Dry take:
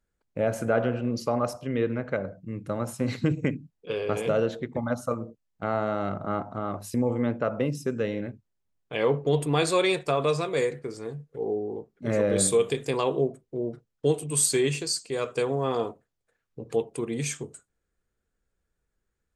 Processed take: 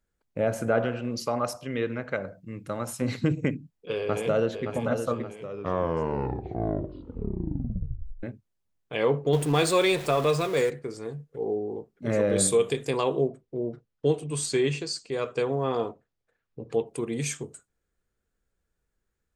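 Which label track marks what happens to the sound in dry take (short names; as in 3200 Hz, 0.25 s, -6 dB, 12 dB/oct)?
0.850000	3.020000	tilt shelf lows -4 dB
3.970000	4.660000	echo throw 0.57 s, feedback 50%, level -7 dB
5.250000	5.250000	tape stop 2.98 s
9.330000	10.700000	zero-crossing step of -33.5 dBFS
13.280000	16.860000	air absorption 83 m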